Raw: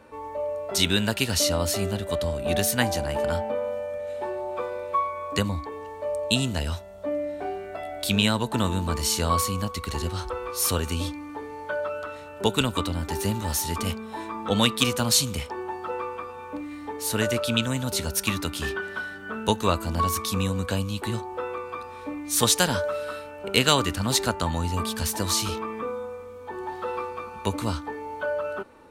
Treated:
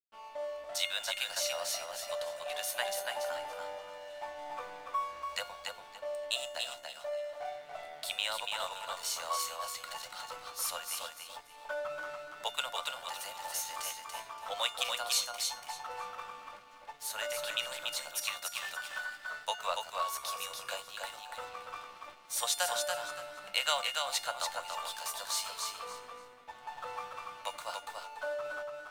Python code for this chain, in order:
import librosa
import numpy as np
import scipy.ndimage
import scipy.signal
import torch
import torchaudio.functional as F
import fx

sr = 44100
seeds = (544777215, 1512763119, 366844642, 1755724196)

p1 = scipy.signal.sosfilt(scipy.signal.butter(12, 530.0, 'highpass', fs=sr, output='sos'), x)
p2 = fx.high_shelf(p1, sr, hz=8800.0, db=-3.0)
p3 = fx.rider(p2, sr, range_db=4, speed_s=0.5)
p4 = p2 + (p3 * librosa.db_to_amplitude(-1.5))
p5 = np.sign(p4) * np.maximum(np.abs(p4) - 10.0 ** (-36.5 / 20.0), 0.0)
p6 = fx.comb_fb(p5, sr, f0_hz=710.0, decay_s=0.42, harmonics='all', damping=0.0, mix_pct=80)
y = fx.echo_feedback(p6, sr, ms=286, feedback_pct=23, wet_db=-4)